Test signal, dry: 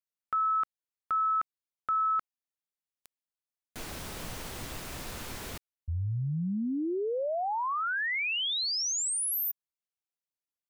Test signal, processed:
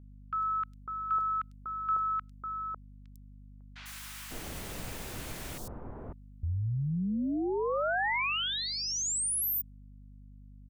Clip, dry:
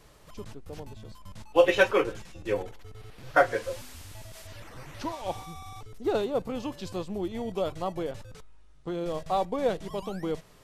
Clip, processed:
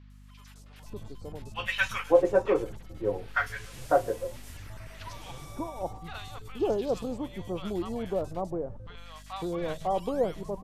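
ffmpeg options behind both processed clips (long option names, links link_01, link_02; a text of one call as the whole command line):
ffmpeg -i in.wav -filter_complex "[0:a]agate=range=-6dB:threshold=-45dB:ratio=3:release=215:detection=peak,acrossover=split=1100|4500[link_01][link_02][link_03];[link_03]adelay=100[link_04];[link_01]adelay=550[link_05];[link_05][link_02][link_04]amix=inputs=3:normalize=0,aeval=exprs='val(0)+0.00316*(sin(2*PI*50*n/s)+sin(2*PI*2*50*n/s)/2+sin(2*PI*3*50*n/s)/3+sin(2*PI*4*50*n/s)/4+sin(2*PI*5*50*n/s)/5)':channel_layout=same" out.wav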